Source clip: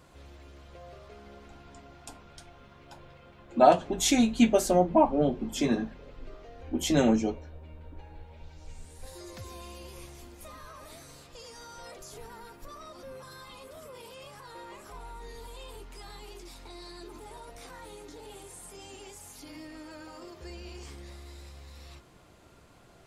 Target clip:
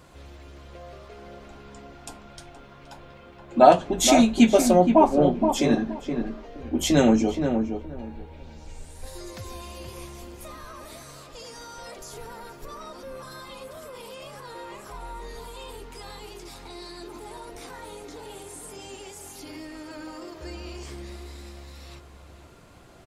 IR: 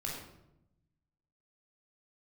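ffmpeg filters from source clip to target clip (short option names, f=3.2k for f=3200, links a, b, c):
-filter_complex "[0:a]asplit=2[a][b];[b]adelay=472,lowpass=f=1.3k:p=1,volume=-6dB,asplit=2[c][d];[d]adelay=472,lowpass=f=1.3k:p=1,volume=0.21,asplit=2[e][f];[f]adelay=472,lowpass=f=1.3k:p=1,volume=0.21[g];[a][c][e][g]amix=inputs=4:normalize=0,volume=5dB"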